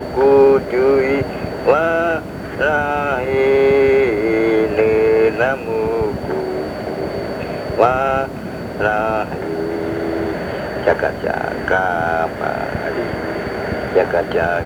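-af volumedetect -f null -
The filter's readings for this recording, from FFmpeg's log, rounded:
mean_volume: -17.0 dB
max_volume: -1.6 dB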